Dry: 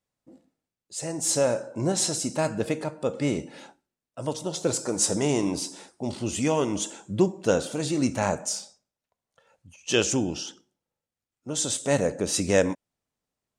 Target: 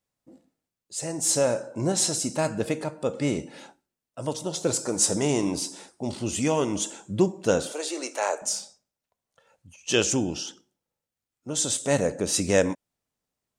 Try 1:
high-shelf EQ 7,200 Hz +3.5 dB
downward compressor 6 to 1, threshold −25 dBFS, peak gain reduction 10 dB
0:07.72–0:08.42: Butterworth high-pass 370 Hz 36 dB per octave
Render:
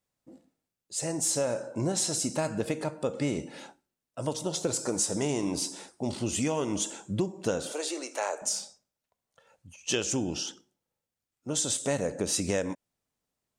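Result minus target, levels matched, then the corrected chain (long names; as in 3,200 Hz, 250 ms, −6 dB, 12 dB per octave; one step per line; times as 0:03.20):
downward compressor: peak gain reduction +10 dB
high-shelf EQ 7,200 Hz +3.5 dB
0:07.72–0:08.42: Butterworth high-pass 370 Hz 36 dB per octave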